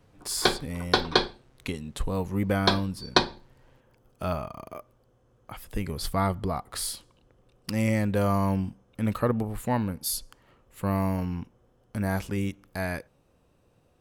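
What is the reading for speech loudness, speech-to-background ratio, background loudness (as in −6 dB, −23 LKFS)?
−30.0 LKFS, −3.0 dB, −27.0 LKFS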